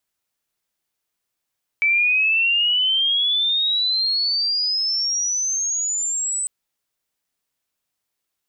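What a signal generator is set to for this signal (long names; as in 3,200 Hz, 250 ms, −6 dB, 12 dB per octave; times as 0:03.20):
glide logarithmic 2,300 Hz → 8,100 Hz −14.5 dBFS → −21 dBFS 4.65 s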